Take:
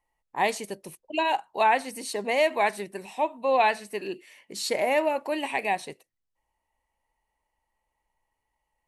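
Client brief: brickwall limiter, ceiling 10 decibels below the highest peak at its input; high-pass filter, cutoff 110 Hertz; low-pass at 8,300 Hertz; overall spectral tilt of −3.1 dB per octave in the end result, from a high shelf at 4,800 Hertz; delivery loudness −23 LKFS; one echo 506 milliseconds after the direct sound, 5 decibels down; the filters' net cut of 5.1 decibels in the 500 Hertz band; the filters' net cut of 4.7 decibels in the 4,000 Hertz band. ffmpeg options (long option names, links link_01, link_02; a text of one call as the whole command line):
ffmpeg -i in.wav -af "highpass=110,lowpass=8300,equalizer=frequency=500:width_type=o:gain=-6.5,equalizer=frequency=4000:width_type=o:gain=-4,highshelf=frequency=4800:gain=-4.5,alimiter=limit=-23.5dB:level=0:latency=1,aecho=1:1:506:0.562,volume=11dB" out.wav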